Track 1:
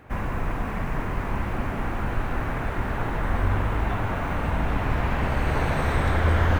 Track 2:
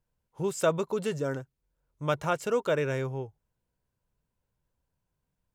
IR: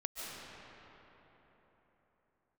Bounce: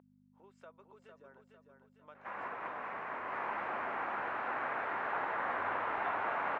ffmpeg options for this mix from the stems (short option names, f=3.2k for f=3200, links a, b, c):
-filter_complex "[0:a]adelay=2150,volume=-3.5dB,asplit=2[a][b];[b]volume=-10dB[c];[1:a]acompressor=threshold=-36dB:ratio=4,volume=-13dB,asplit=3[d][e][f];[e]volume=-5.5dB[g];[f]apad=whole_len=385724[h];[a][h]sidechaincompress=threshold=-54dB:ratio=4:attack=31:release=266[i];[2:a]atrim=start_sample=2205[j];[c][j]afir=irnorm=-1:irlink=0[k];[g]aecho=0:1:452|904|1356|1808|2260|2712|3164:1|0.49|0.24|0.118|0.0576|0.0282|0.0138[l];[i][d][k][l]amix=inputs=4:normalize=0,aeval=exprs='val(0)+0.0158*(sin(2*PI*50*n/s)+sin(2*PI*2*50*n/s)/2+sin(2*PI*3*50*n/s)/3+sin(2*PI*4*50*n/s)/4+sin(2*PI*5*50*n/s)/5)':c=same,highpass=710,lowpass=2k"